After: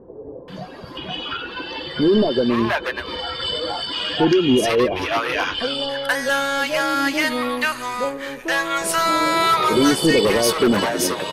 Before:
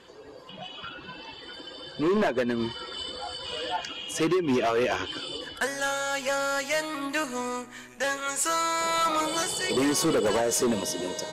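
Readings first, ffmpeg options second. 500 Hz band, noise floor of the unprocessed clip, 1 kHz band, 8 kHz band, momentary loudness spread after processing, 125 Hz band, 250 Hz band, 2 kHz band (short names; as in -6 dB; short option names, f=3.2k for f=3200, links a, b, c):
+7.5 dB, -47 dBFS, +8.0 dB, +2.0 dB, 12 LU, +9.5 dB, +9.0 dB, +9.0 dB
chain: -filter_complex "[0:a]asplit=2[a][b];[b]alimiter=level_in=4dB:limit=-24dB:level=0:latency=1:release=414,volume=-4dB,volume=2.5dB[c];[a][c]amix=inputs=2:normalize=0,equalizer=f=7.3k:t=o:w=0.39:g=-14,acrossover=split=690[d][e];[e]adelay=480[f];[d][f]amix=inputs=2:normalize=0,volume=5.5dB"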